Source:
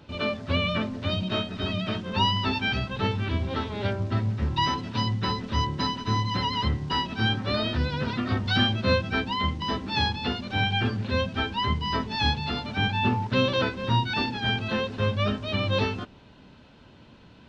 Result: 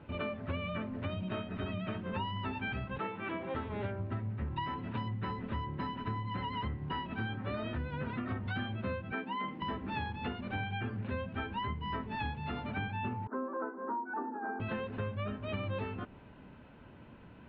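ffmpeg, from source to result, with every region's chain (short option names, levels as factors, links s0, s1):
-filter_complex "[0:a]asettb=1/sr,asplit=3[s0][s1][s2];[s0]atrim=end=2.984[s3];[s1]atrim=start=2.98:end=3.55,asetpts=PTS-STARTPTS,afade=t=in:d=0.004:c=qsin,afade=t=out:st=0.566:d=0.004:c=qsin,highpass=300,lowpass=3900,aecho=1:1:6:0.43,atrim=end_sample=25137[s4];[s2]atrim=start=3.546[s5];[s3][s4]acrossfade=d=0.004:c1=hsin:c2=qsin[s6];[s6][s5]acrossfade=d=0.004:c1=qsin:c2=hsin,asettb=1/sr,asplit=3[s7][s8][s9];[s7]atrim=end=9.124[s10];[s8]atrim=start=9.12:end=9.62,asetpts=PTS-STARTPTS,afade=t=in:d=0.004:c=qsin,afade=t=out:st=0.496:d=0.004:c=qsin,bandreject=f=3800:w=28,acrossover=split=3400[s11][s12];[s12]acompressor=threshold=0.00631:ratio=4:attack=1:release=60[s13];[s11][s13]amix=inputs=2:normalize=0,highpass=f=190:w=0.5412,highpass=f=190:w=1.3066[s14];[s9]atrim=start=9.616[s15];[s10][s14]acrossfade=d=0.004:c1=hsin:c2=qsin[s16];[s16][s15]acrossfade=d=0.004:c1=qsin:c2=hsin,asettb=1/sr,asplit=3[s17][s18][s19];[s17]atrim=end=13.274[s20];[s18]atrim=start=13.27:end=14.6,asetpts=PTS-STARTPTS,afade=t=in:d=0.004:c=qsin,afade=t=out:st=1.326:d=0.004:c=qsin,asuperpass=centerf=610:order=12:qfactor=0.51,bandreject=f=560:w=5.3[s21];[s19]atrim=start=14.596[s22];[s20][s21]acrossfade=d=0.004:c1=hsin:c2=qsin[s23];[s23][s22]acrossfade=d=0.004:c1=qsin:c2=hsin,lowpass=f=2500:w=0.5412,lowpass=f=2500:w=1.3066,acompressor=threshold=0.0251:ratio=6,volume=0.794"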